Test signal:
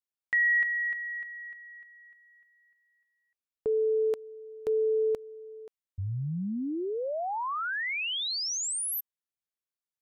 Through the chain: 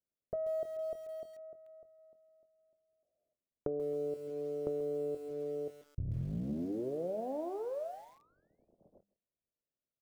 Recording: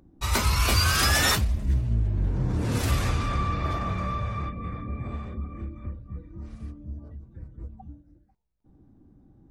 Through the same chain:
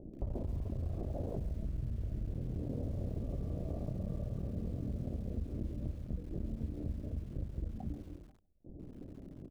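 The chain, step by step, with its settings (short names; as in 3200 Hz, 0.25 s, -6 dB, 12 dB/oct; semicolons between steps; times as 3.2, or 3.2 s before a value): cycle switcher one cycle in 3, muted; elliptic low-pass 630 Hz, stop band 80 dB; de-hum 100.4 Hz, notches 2; on a send: echo 0.157 s -23.5 dB; on the sum: limiter -26.5 dBFS; doubler 23 ms -12 dB; compressor 12:1, threshold -43 dBFS; lo-fi delay 0.135 s, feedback 35%, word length 10-bit, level -14.5 dB; gain +9 dB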